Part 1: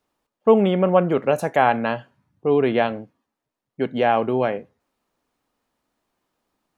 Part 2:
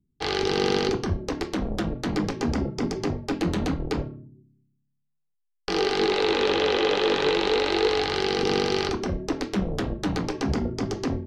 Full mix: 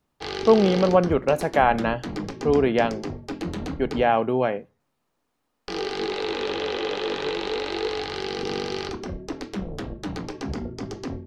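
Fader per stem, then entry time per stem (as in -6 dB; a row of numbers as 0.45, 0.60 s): -1.5, -5.0 dB; 0.00, 0.00 s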